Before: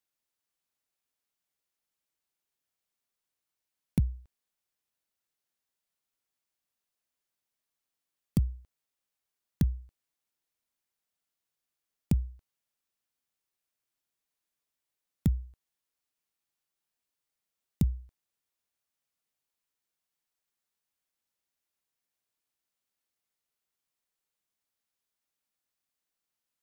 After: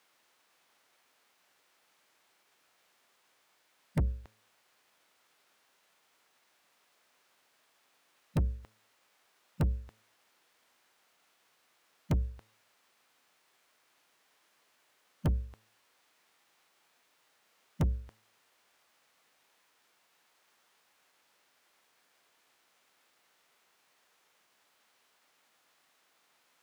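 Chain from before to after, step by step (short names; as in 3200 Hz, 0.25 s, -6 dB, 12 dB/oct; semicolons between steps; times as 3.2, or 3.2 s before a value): formant shift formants -3 st; overdrive pedal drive 37 dB, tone 1600 Hz, clips at -16 dBFS; de-hum 109 Hz, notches 5; gain -3.5 dB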